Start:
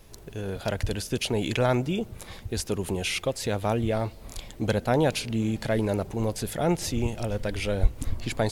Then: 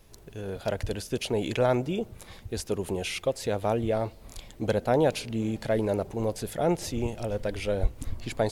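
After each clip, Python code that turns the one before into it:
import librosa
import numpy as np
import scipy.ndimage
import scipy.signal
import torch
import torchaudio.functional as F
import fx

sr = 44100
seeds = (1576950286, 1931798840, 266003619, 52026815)

y = fx.dynamic_eq(x, sr, hz=530.0, q=0.82, threshold_db=-36.0, ratio=4.0, max_db=6)
y = y * 10.0 ** (-4.5 / 20.0)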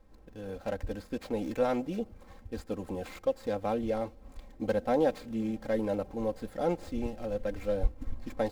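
y = scipy.ndimage.median_filter(x, 15, mode='constant')
y = y + 0.75 * np.pad(y, (int(3.8 * sr / 1000.0), 0))[:len(y)]
y = y * 10.0 ** (-5.5 / 20.0)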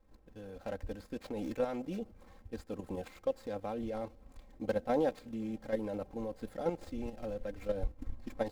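y = fx.level_steps(x, sr, step_db=9)
y = y * 10.0 ** (-1.5 / 20.0)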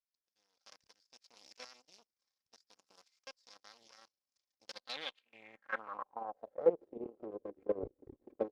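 y = fx.cheby_harmonics(x, sr, harmonics=(6, 7), levels_db=(-19, -18), full_scale_db=-19.0)
y = fx.filter_sweep_bandpass(y, sr, from_hz=5300.0, to_hz=390.0, start_s=4.7, end_s=6.83, q=5.0)
y = y * 10.0 ** (10.5 / 20.0)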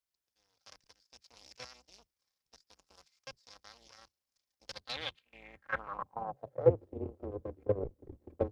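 y = fx.octave_divider(x, sr, octaves=2, level_db=1.0)
y = y * 10.0 ** (3.0 / 20.0)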